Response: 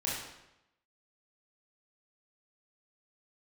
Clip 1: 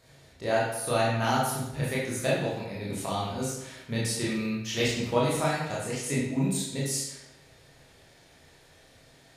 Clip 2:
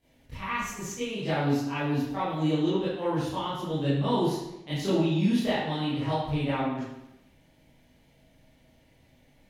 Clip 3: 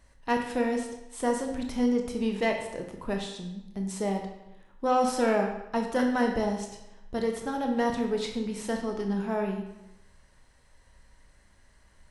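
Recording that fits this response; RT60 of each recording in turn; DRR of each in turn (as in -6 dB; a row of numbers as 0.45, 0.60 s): 1; 0.90, 0.90, 0.90 s; -6.5, -13.0, 2.5 dB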